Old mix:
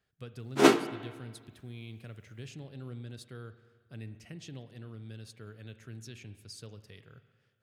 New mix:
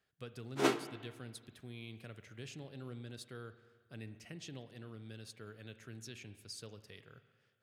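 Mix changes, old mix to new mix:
background -9.0 dB; master: add bass shelf 160 Hz -9 dB

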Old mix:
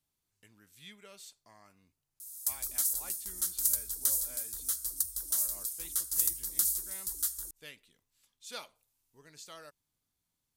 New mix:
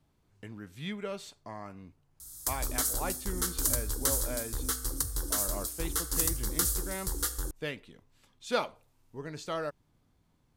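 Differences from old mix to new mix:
background: send +6.0 dB; master: remove pre-emphasis filter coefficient 0.9

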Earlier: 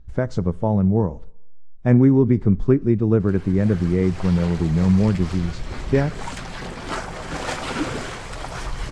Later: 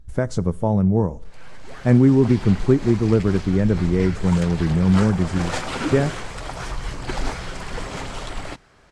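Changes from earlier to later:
speech: remove distance through air 110 m; background: entry -1.95 s

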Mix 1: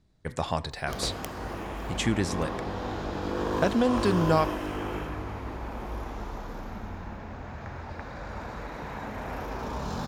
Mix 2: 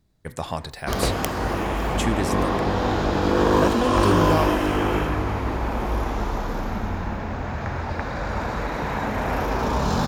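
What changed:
speech: remove low-pass 7.5 kHz 12 dB/octave; background +11.0 dB

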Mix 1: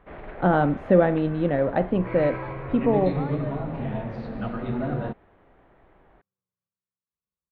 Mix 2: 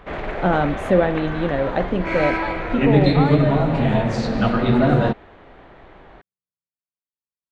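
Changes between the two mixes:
first sound +11.0 dB; second sound -11.0 dB; master: remove distance through air 350 m

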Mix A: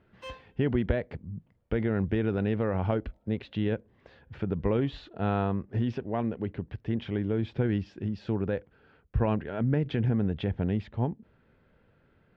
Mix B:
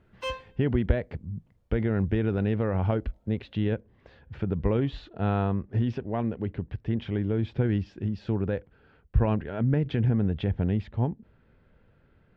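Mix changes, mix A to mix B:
background +9.5 dB; master: add bass shelf 88 Hz +9 dB

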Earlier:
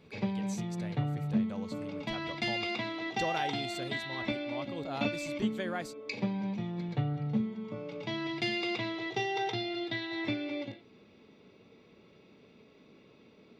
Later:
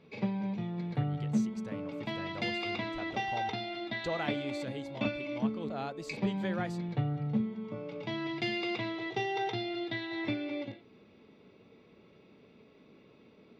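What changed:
speech: entry +0.85 s; master: add low-pass 3.6 kHz 6 dB/octave

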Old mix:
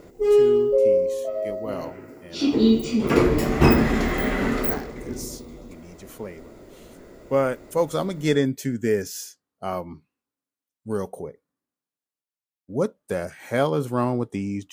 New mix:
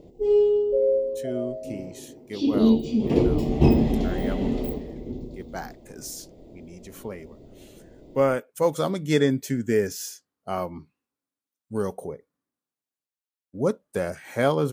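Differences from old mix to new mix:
speech: entry +0.85 s; background: add FFT filter 190 Hz 0 dB, 830 Hz -5 dB, 1.4 kHz -27 dB, 3.2 kHz -5 dB, 11 kHz -18 dB, 16 kHz -14 dB

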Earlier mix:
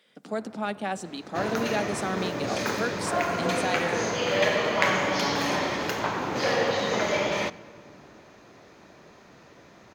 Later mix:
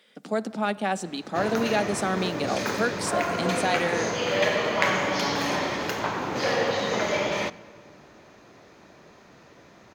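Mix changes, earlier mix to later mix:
speech +4.0 dB; first sound -5.0 dB

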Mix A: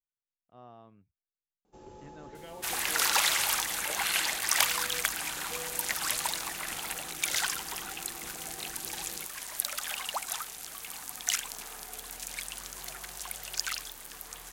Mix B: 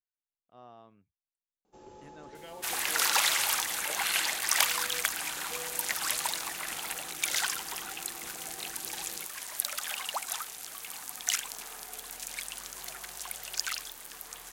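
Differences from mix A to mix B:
speech: remove distance through air 110 m; master: add bass shelf 180 Hz -7.5 dB

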